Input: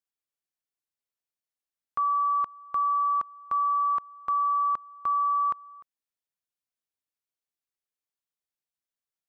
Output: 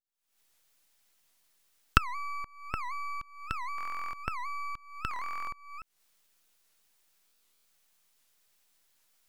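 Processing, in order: recorder AGC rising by 74 dB/s; HPF 1500 Hz 6 dB/oct; half-wave rectifier; stuck buffer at 3.76/5.1/7.27, samples 1024, times 15; record warp 78 rpm, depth 250 cents; gain -3.5 dB

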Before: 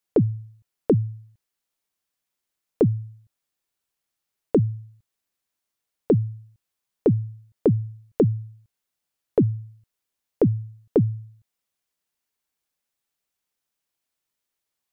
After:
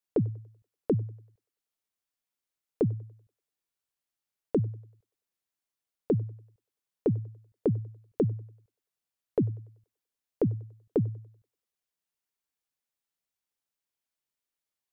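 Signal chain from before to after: thinning echo 96 ms, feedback 49%, high-pass 340 Hz, level -23 dB; gain -7.5 dB

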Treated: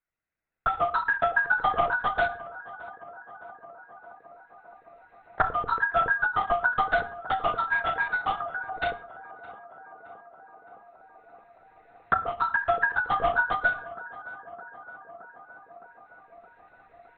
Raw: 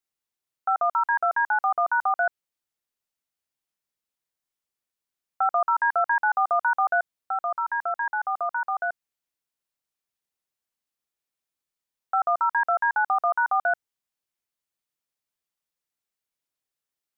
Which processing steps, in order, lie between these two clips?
recorder AGC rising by 9.6 dB/s; notches 60/120/180/240/300/360/420/480 Hz; 8.37–8.82 envelope phaser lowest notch 510 Hz, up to 1200 Hz, full sweep at -24 dBFS; fixed phaser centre 890 Hz, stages 6; in parallel at -9 dB: sample gate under -26 dBFS; on the sum: compressor 2:1, threshold -26 dBFS, peak gain reduction 13.5 dB; LPC vocoder at 8 kHz whisper; tape echo 0.616 s, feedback 87%, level -17 dB, low-pass 1400 Hz; on a send at -10.5 dB: reverb RT60 0.45 s, pre-delay 6 ms; on the sum: ending taper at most 170 dB/s; gain +5.5 dB

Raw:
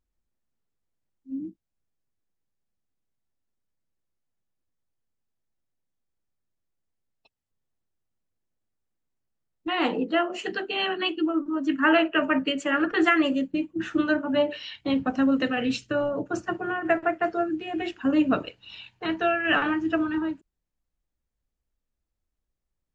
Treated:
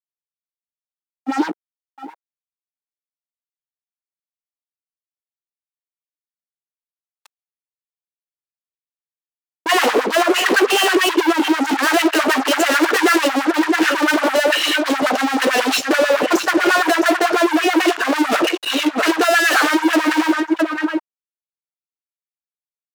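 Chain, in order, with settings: echo 0.663 s -17.5 dB; fuzz box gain 43 dB, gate -52 dBFS; LFO high-pass sine 9.1 Hz 320–1700 Hz; gain -3 dB

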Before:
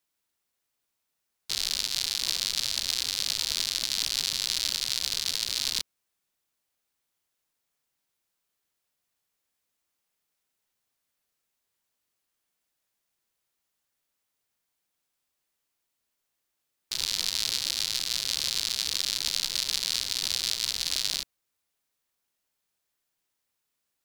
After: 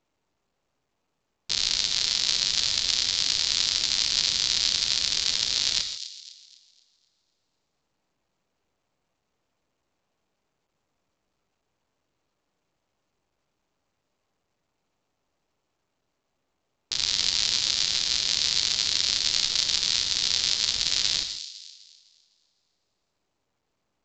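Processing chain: Wiener smoothing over 25 samples; on a send: thin delay 0.253 s, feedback 38%, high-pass 3400 Hz, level -10 dB; on the sum: non-linear reverb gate 0.18 s flat, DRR 7.5 dB; gain +4 dB; µ-law 128 kbps 16000 Hz

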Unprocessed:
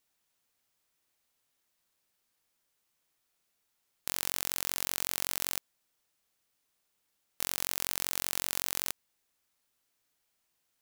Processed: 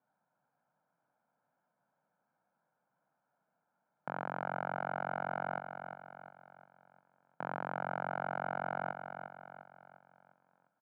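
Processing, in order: elliptic band-pass 150–1300 Hz, stop band 70 dB; air absorption 66 m; comb 1.3 ms, depth 74%; feedback echo 0.352 s, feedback 46%, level -8 dB; gain +7 dB

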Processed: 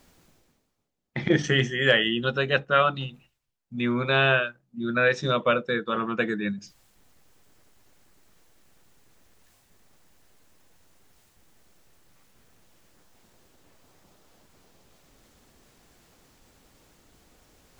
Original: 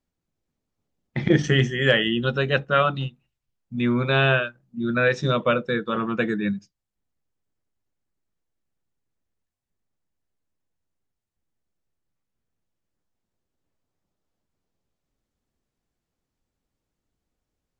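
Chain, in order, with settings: low shelf 290 Hz -7 dB; reverse; upward compressor, threshold -37 dBFS; reverse

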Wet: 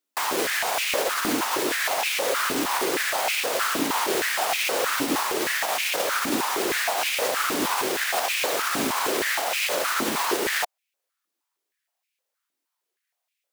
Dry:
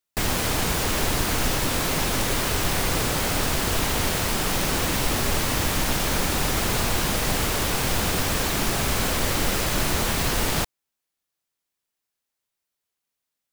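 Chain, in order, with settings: limiter -16 dBFS, peak gain reduction 6 dB; stepped high-pass 6.4 Hz 280–2400 Hz

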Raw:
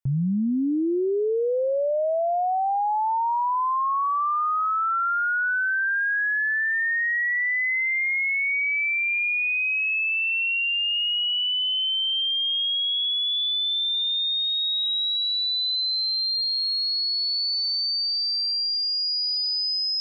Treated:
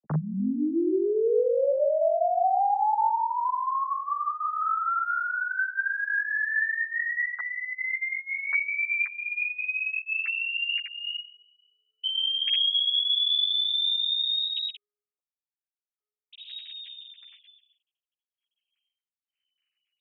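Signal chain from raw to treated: sine-wave speech; reverb removal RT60 2 s; in parallel at -2 dB: compressor, threshold -35 dBFS, peak gain reduction 15 dB; on the sum: ensemble effect

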